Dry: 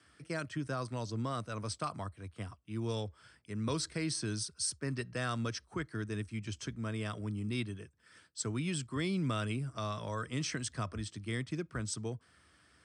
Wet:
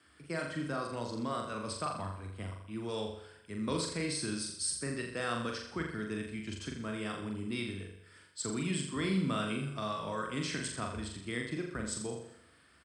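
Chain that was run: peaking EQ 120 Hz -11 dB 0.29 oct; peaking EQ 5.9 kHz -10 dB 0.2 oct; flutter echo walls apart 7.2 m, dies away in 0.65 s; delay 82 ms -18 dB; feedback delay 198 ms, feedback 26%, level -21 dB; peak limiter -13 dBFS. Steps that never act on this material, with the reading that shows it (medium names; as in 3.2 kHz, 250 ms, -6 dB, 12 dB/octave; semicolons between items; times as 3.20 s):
peak limiter -13 dBFS: peak at its input -20.0 dBFS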